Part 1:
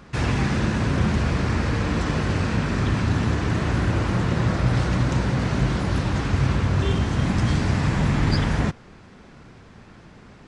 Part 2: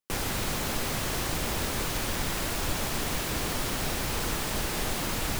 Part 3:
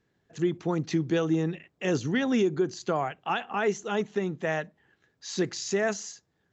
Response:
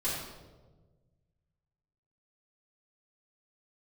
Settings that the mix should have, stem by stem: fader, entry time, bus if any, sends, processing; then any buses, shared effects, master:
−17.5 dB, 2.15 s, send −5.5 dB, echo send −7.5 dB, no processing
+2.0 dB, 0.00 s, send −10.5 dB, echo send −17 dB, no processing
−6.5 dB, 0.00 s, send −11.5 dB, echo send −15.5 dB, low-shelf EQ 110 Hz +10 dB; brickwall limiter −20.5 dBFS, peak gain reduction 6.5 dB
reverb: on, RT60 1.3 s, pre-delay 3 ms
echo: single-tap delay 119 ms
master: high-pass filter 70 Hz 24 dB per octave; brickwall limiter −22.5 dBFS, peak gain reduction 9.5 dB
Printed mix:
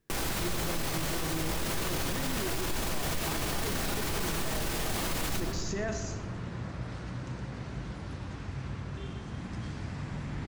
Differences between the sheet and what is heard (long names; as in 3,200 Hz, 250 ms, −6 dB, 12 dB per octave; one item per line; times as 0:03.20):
stem 1: send off
master: missing high-pass filter 70 Hz 24 dB per octave